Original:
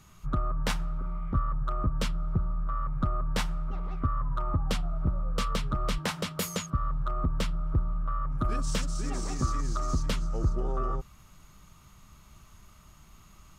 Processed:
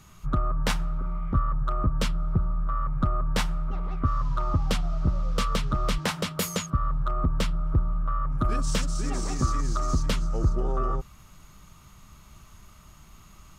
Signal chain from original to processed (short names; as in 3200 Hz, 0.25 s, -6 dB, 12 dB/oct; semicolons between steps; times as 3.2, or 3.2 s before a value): 4.05–6.12 band noise 910–6100 Hz -63 dBFS; gain +3.5 dB